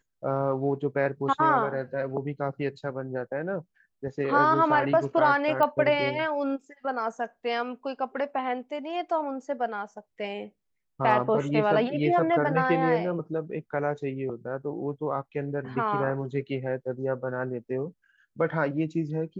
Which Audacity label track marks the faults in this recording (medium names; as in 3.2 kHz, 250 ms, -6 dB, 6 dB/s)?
5.630000	5.630000	pop -14 dBFS